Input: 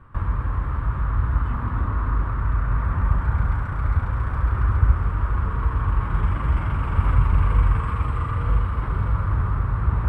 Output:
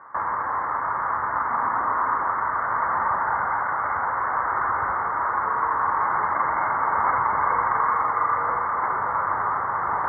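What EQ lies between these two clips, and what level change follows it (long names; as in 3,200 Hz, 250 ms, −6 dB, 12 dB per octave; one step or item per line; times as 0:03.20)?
high-pass filter 620 Hz 12 dB per octave
linear-phase brick-wall low-pass 2,200 Hz
parametric band 820 Hz +8.5 dB 0.73 octaves
+8.0 dB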